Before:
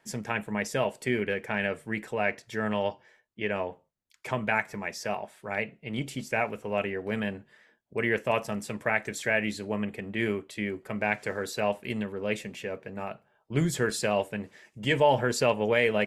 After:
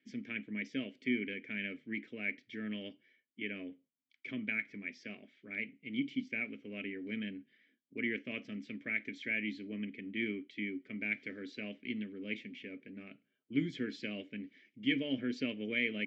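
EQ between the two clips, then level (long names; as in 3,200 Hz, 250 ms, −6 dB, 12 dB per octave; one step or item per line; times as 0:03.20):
formant filter i
Butterworth low-pass 6,300 Hz
+4.0 dB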